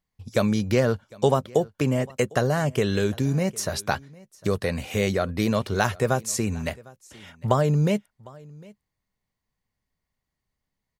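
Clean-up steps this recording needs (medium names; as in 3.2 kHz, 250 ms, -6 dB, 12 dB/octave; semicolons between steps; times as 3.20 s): inverse comb 754 ms -23.5 dB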